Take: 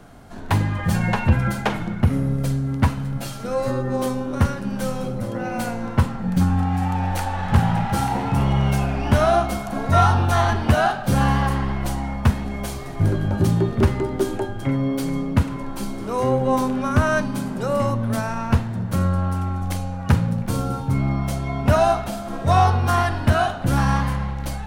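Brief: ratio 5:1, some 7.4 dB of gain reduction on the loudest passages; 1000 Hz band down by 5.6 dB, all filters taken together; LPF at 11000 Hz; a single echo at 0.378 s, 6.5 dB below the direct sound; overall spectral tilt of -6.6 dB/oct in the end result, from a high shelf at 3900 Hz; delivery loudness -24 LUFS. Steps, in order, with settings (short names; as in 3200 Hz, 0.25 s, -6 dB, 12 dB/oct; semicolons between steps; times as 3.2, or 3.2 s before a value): LPF 11000 Hz; bell 1000 Hz -8 dB; high shelf 3900 Hz -3.5 dB; compressor 5:1, threshold -20 dBFS; echo 0.378 s -6.5 dB; gain +1.5 dB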